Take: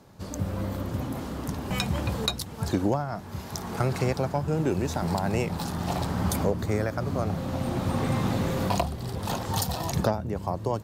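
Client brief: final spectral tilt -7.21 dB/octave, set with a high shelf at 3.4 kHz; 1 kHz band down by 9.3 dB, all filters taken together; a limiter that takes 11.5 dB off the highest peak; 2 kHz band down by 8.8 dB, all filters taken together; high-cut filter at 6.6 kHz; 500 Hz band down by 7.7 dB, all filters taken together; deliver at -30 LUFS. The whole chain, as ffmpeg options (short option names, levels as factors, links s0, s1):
-af "lowpass=6600,equalizer=f=500:t=o:g=-7.5,equalizer=f=1000:t=o:g=-7.5,equalizer=f=2000:t=o:g=-7,highshelf=f=3400:g=-5,volume=1.88,alimiter=limit=0.0891:level=0:latency=1"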